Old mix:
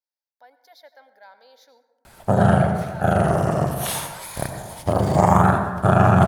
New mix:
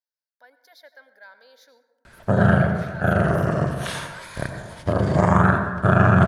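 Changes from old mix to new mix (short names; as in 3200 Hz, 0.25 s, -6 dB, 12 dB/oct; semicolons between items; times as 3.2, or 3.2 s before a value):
background: add air absorption 94 m; master: add thirty-one-band EQ 800 Hz -10 dB, 1600 Hz +7 dB, 10000 Hz +4 dB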